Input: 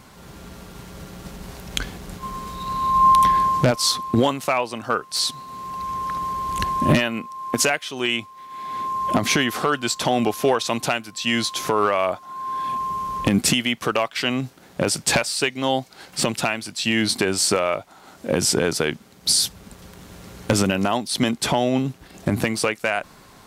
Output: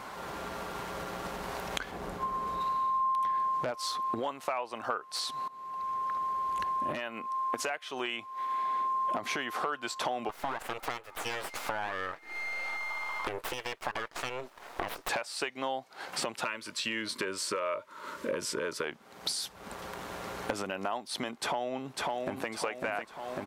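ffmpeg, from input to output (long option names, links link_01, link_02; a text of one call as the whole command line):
ffmpeg -i in.wav -filter_complex "[0:a]asettb=1/sr,asplit=3[link_01][link_02][link_03];[link_01]atrim=end=1.914[link_04];[link_02]atrim=start=1.91:end=2.61,asetpts=PTS-STARTPTS,afade=type=in:duration=0.004:curve=qsin,afade=type=out:start_time=0.696:duration=0.004:curve=qsin,tiltshelf=frequency=970:gain=4[link_05];[link_03]atrim=start=2.606[link_06];[link_04][link_05]acrossfade=duration=0.004:curve1=hsin:curve2=qsin[link_07];[link_07][link_06]acrossfade=duration=0.004:curve1=qsin:curve2=hsin,asettb=1/sr,asplit=3[link_08][link_09][link_10];[link_08]atrim=end=10.294[link_11];[link_09]atrim=start=10.29:end=15.09,asetpts=PTS-STARTPTS,afade=type=in:duration=0.004:curve=qsin,afade=type=out:start_time=4.796:duration=0.004:curve=qsin,aeval=exprs='abs(val(0))':channel_layout=same[link_12];[link_10]atrim=start=15.086[link_13];[link_11][link_12]acrossfade=duration=0.004:curve1=hsin:curve2=qsin[link_14];[link_14][link_13]acrossfade=duration=0.004:curve1=qsin:curve2=hsin,asettb=1/sr,asplit=3[link_15][link_16][link_17];[link_15]atrim=end=16.444[link_18];[link_16]atrim=start=16.44:end=18.84,asetpts=PTS-STARTPTS,afade=type=in:duration=0.004:curve=qsin,afade=type=out:start_time=2.396:duration=0.004:curve=qsin,asuperstop=centerf=750:order=20:qfactor=2.9[link_19];[link_17]atrim=start=18.836[link_20];[link_18][link_19]acrossfade=duration=0.004:curve1=hsin:curve2=qsin[link_21];[link_21][link_20]acrossfade=duration=0.004:curve1=qsin:curve2=hsin,asplit=2[link_22][link_23];[link_23]afade=type=in:start_time=21.41:duration=0.01,afade=type=out:start_time=22.49:duration=0.01,aecho=0:1:550|1100|1650|2200|2750:0.530884|0.212354|0.0849415|0.0339766|0.0135906[link_24];[link_22][link_24]amix=inputs=2:normalize=0,asplit=2[link_25][link_26];[link_25]atrim=end=5.48,asetpts=PTS-STARTPTS,afade=type=out:start_time=5.476:duration=0.004:curve=hsin:silence=0.0841395[link_27];[link_26]atrim=start=5.48,asetpts=PTS-STARTPTS,afade=type=in:duration=3.22:silence=0.0841395[link_28];[link_27][link_28]concat=n=2:v=0:a=1,equalizer=frequency=960:width_type=o:width=2.5:gain=9,acompressor=threshold=-31dB:ratio=6,bass=frequency=250:gain=-9,treble=frequency=4000:gain=-3" out.wav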